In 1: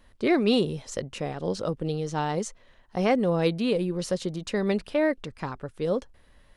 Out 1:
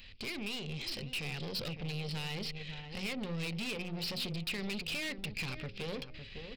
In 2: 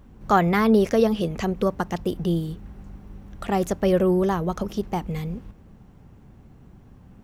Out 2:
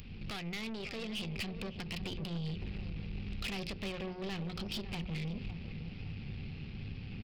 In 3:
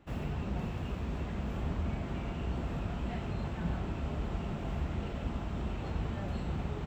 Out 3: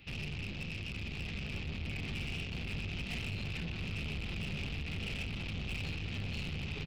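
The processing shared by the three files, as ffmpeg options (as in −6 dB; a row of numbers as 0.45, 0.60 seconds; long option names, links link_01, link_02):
-filter_complex "[0:a]equalizer=frequency=100:width_type=o:width=0.33:gain=6,equalizer=frequency=160:width_type=o:width=0.33:gain=4,equalizer=frequency=315:width_type=o:width=0.33:gain=-6,equalizer=frequency=630:width_type=o:width=0.33:gain=-8,equalizer=frequency=1000:width_type=o:width=0.33:gain=-8,equalizer=frequency=2500:width_type=o:width=0.33:gain=9,acompressor=threshold=-30dB:ratio=12,aresample=11025,asoftclip=type=tanh:threshold=-36.5dB,aresample=44100,asplit=2[link_01][link_02];[link_02]adelay=556,lowpass=frequency=1100:poles=1,volume=-11dB,asplit=2[link_03][link_04];[link_04]adelay=556,lowpass=frequency=1100:poles=1,volume=0.27,asplit=2[link_05][link_06];[link_06]adelay=556,lowpass=frequency=1100:poles=1,volume=0.27[link_07];[link_01][link_03][link_05][link_07]amix=inputs=4:normalize=0,alimiter=level_in=14.5dB:limit=-24dB:level=0:latency=1:release=174,volume=-14.5dB,bandreject=frequency=60:width_type=h:width=6,bandreject=frequency=120:width_type=h:width=6,bandreject=frequency=180:width_type=h:width=6,bandreject=frequency=240:width_type=h:width=6,bandreject=frequency=300:width_type=h:width=6,bandreject=frequency=360:width_type=h:width=6,bandreject=frequency=420:width_type=h:width=6,bandreject=frequency=480:width_type=h:width=6,bandreject=frequency=540:width_type=h:width=6,aexciter=amount=3.6:drive=6.5:freq=2200,aeval=exprs='0.0531*(cos(1*acos(clip(val(0)/0.0531,-1,1)))-cos(1*PI/2))+0.00188*(cos(5*acos(clip(val(0)/0.0531,-1,1)))-cos(5*PI/2))+0.00841*(cos(6*acos(clip(val(0)/0.0531,-1,1)))-cos(6*PI/2))+0.0015*(cos(8*acos(clip(val(0)/0.0531,-1,1)))-cos(8*PI/2))':channel_layout=same,dynaudnorm=framelen=120:gausssize=21:maxgain=3.5dB,equalizer=frequency=860:width=0.89:gain=-3,volume=31.5dB,asoftclip=hard,volume=-31.5dB"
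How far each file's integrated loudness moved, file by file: −11.0, −17.5, −2.0 LU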